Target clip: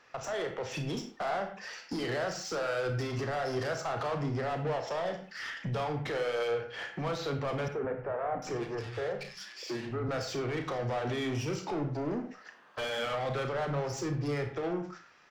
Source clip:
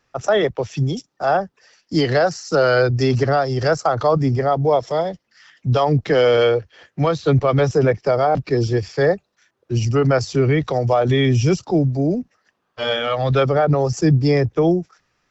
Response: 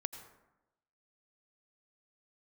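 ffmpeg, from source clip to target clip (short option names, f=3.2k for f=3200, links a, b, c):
-filter_complex "[0:a]acompressor=threshold=-31dB:ratio=4,alimiter=level_in=1.5dB:limit=-24dB:level=0:latency=1:release=82,volume=-1.5dB,dynaudnorm=f=160:g=9:m=4dB,asplit=2[a][b];[b]highpass=f=720:p=1,volume=22dB,asoftclip=type=tanh:threshold=-21dB[c];[a][c]amix=inputs=2:normalize=0,lowpass=f=2.6k:p=1,volume=-6dB,asplit=2[d][e];[e]adelay=34,volume=-9dB[f];[d][f]amix=inputs=2:normalize=0,asettb=1/sr,asplit=3[g][h][i];[g]atrim=end=7.684[j];[h]atrim=start=7.68:end=10.09,asetpts=PTS-STARTPTS,afade=t=in:d=0.004:c=qsin,afade=t=out:st=2.406:d=0.004:c=qsin,acrossover=split=150|1900[k][l][m];[k]adelay=160[n];[m]adelay=740[o];[n][l][o]amix=inputs=3:normalize=0,atrim=end_sample=106281[p];[i]atrim=start=10.086[q];[j][p]acrossfade=d=0.004:c1=hsin:c2=qsin[r];[r][q]acrossfade=d=0.004:c1=qsin:c2=hsin[s];[1:a]atrim=start_sample=2205,afade=t=out:st=0.41:d=0.01,atrim=end_sample=18522,asetrate=79380,aresample=44100[t];[s][t]afir=irnorm=-1:irlink=0"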